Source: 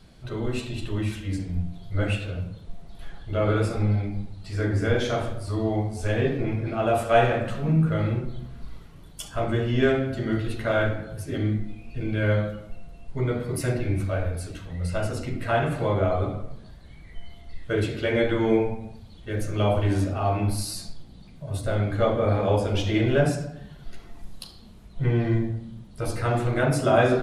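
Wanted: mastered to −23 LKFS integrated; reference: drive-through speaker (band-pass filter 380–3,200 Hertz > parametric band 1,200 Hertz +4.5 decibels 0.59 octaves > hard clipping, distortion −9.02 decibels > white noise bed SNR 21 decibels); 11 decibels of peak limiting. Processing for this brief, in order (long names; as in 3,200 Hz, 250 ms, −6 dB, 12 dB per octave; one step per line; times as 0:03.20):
brickwall limiter −17 dBFS
band-pass filter 380–3,200 Hz
parametric band 1,200 Hz +4.5 dB 0.59 octaves
hard clipping −28.5 dBFS
white noise bed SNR 21 dB
level +11.5 dB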